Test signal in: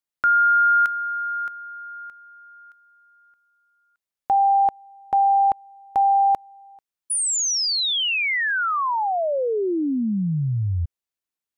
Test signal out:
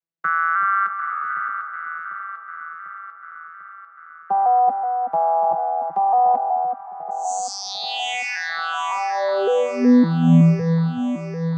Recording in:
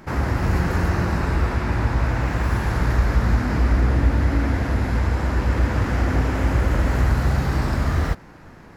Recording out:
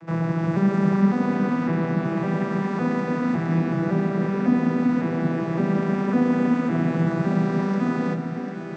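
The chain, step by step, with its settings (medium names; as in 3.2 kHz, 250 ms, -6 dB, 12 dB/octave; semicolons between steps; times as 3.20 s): vocoder on a broken chord minor triad, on E3, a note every 557 ms; echo whose repeats swap between lows and highs 373 ms, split 1.1 kHz, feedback 78%, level -6 dB; trim +2.5 dB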